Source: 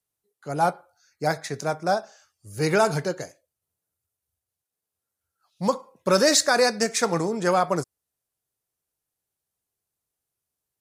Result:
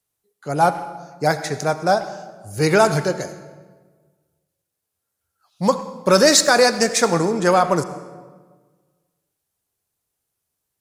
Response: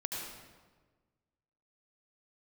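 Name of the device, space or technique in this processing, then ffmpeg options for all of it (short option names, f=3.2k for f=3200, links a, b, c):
saturated reverb return: -filter_complex "[0:a]asplit=2[a][b];[1:a]atrim=start_sample=2205[c];[b][c]afir=irnorm=-1:irlink=0,asoftclip=type=tanh:threshold=-14dB,volume=-10.5dB[d];[a][d]amix=inputs=2:normalize=0,volume=4dB"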